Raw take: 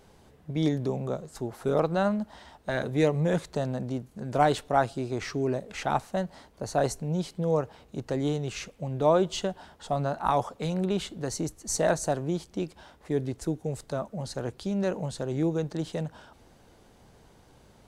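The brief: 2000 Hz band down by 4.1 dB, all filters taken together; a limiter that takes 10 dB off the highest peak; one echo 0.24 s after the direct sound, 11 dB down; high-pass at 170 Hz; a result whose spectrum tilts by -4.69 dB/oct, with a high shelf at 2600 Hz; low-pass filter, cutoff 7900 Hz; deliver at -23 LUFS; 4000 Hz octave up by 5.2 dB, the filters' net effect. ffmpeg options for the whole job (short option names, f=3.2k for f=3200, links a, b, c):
-af "highpass=170,lowpass=7.9k,equalizer=f=2k:t=o:g=-9,highshelf=f=2.6k:g=5,equalizer=f=4k:t=o:g=5,alimiter=limit=-20dB:level=0:latency=1,aecho=1:1:240:0.282,volume=9dB"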